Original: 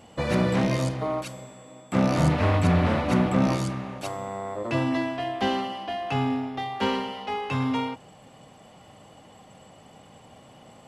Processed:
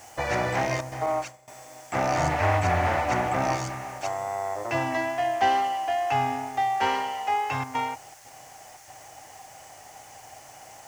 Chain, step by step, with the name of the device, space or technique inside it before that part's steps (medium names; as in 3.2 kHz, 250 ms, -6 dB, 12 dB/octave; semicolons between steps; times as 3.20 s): worn cassette (low-pass 6.8 kHz; wow and flutter 16 cents; level dips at 0.81/7.64/8.14/8.77 s, 107 ms -8 dB; white noise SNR 25 dB); FFT filter 120 Hz 0 dB, 200 Hz -14 dB, 320 Hz -1 dB, 520 Hz -1 dB, 770 Hz +12 dB, 1.1 kHz +3 dB, 1.9 kHz +9 dB, 3.8 kHz -2 dB, 6.2 kHz +11 dB, 13 kHz -2 dB; 1.06–1.48 s: expander -26 dBFS; trim -3.5 dB